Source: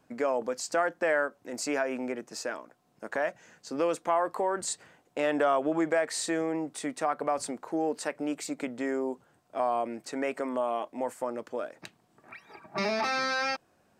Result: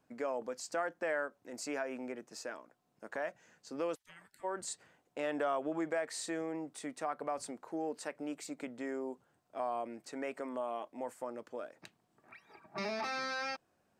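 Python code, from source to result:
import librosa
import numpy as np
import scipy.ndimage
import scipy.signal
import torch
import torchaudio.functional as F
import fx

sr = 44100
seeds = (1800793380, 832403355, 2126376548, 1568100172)

y = fx.spec_gate(x, sr, threshold_db=-25, keep='weak', at=(3.94, 4.43), fade=0.02)
y = y * 10.0 ** (-8.5 / 20.0)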